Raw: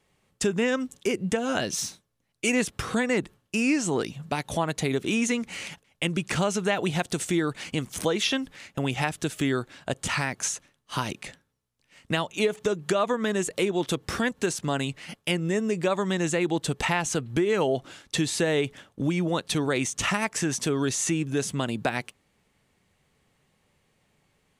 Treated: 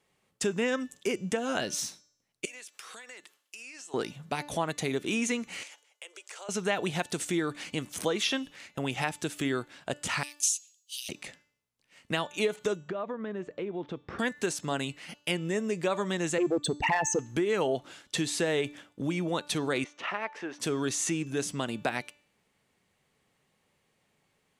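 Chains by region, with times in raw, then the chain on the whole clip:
2.45–3.94 HPF 460 Hz + tilt shelf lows -6.5 dB, about 1300 Hz + compressor 12:1, threshold -39 dBFS
5.63–6.49 steep high-pass 420 Hz 48 dB/oct + bell 7100 Hz +7.5 dB 0.86 oct + compressor 2.5:1, threshold -45 dBFS
10.23–11.09 steep high-pass 2700 Hz 48 dB/oct + high shelf 6400 Hz +10 dB
12.77–14.19 tape spacing loss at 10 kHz 43 dB + compressor 2:1, threshold -29 dBFS
16.38–17.19 formant sharpening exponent 3 + sample leveller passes 1 + Doppler distortion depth 0.18 ms
19.84–20.6 Chebyshev high-pass 440 Hz + air absorption 330 m
whole clip: low shelf 110 Hz -11 dB; de-hum 293.3 Hz, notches 27; gain -3 dB

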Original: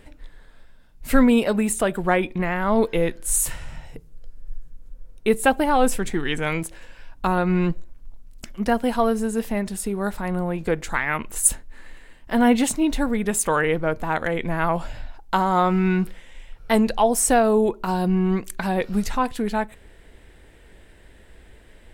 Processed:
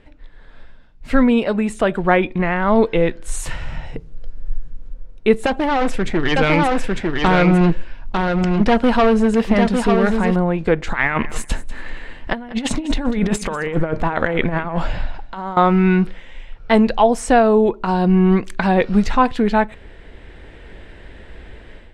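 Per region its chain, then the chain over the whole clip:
5.46–10.36 overloaded stage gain 20.5 dB + echo 0.901 s -4.5 dB
10.87–15.57 negative-ratio compressor -26 dBFS, ratio -0.5 + feedback echo 0.194 s, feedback 16%, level -16.5 dB
whole clip: LPF 4000 Hz 12 dB/oct; AGC; gain -1 dB

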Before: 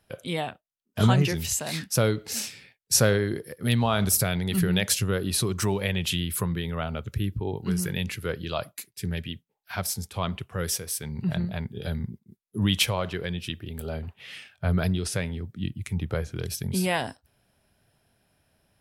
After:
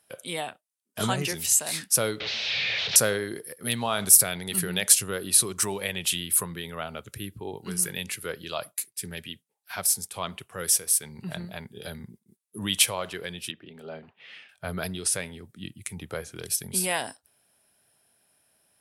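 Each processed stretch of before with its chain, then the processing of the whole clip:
2.2–2.96 delta modulation 32 kbps, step -18 dBFS + EQ curve 110 Hz 0 dB, 300 Hz -15 dB, 540 Hz -5 dB, 1100 Hz -14 dB, 2500 Hz 0 dB, 3800 Hz +1 dB, 7300 Hz -26 dB
13.51–14.49 HPF 130 Hz 24 dB/oct + air absorption 250 m
whole clip: HPF 420 Hz 6 dB/oct; bell 9500 Hz +12 dB 0.88 oct; gain -1 dB

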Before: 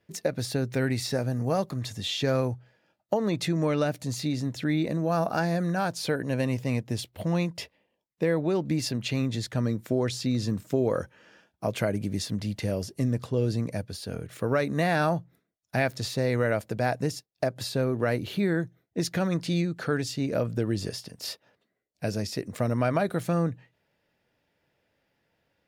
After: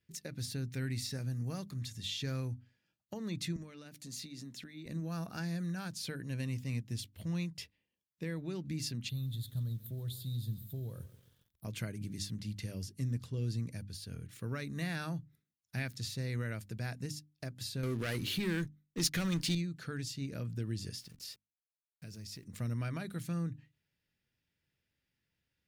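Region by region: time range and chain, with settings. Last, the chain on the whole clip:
3.56–4.86 HPF 170 Hz 24 dB/oct + compressor 12:1, threshold -31 dBFS
9.09–11.65 EQ curve 150 Hz 0 dB, 250 Hz -12 dB, 650 Hz -6 dB, 1700 Hz -16 dB, 2400 Hz -25 dB, 3600 Hz +2 dB, 5600 Hz -22 dB, 13000 Hz +12 dB + lo-fi delay 0.136 s, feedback 55%, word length 8-bit, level -15 dB
17.83–19.55 low shelf 210 Hz -10 dB + sample leveller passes 3
20.99–22.45 level-crossing sampler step -51 dBFS + compressor 3:1, threshold -35 dBFS
whole clip: passive tone stack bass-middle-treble 6-0-2; notches 50/100/150/200/250/300 Hz; gain +8 dB

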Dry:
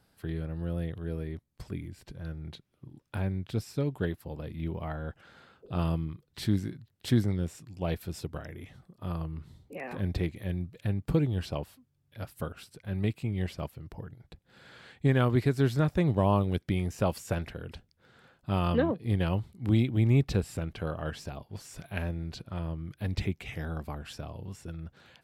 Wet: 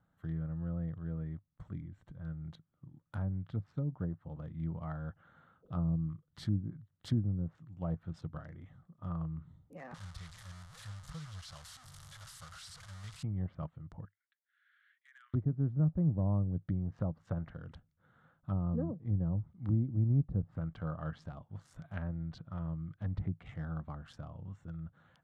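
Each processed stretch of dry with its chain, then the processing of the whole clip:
9.94–13.23 delta modulation 64 kbps, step -30.5 dBFS + passive tone stack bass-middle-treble 10-0-10
14.05–15.34 steep high-pass 1600 Hz 48 dB/oct + compressor 8:1, threshold -42 dBFS + air absorption 290 m
whole clip: Wiener smoothing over 9 samples; treble ducked by the level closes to 480 Hz, closed at -24.5 dBFS; thirty-one-band EQ 100 Hz +5 dB, 160 Hz +8 dB, 400 Hz -10 dB, 1250 Hz +7 dB, 2500 Hz -11 dB; gain -8 dB

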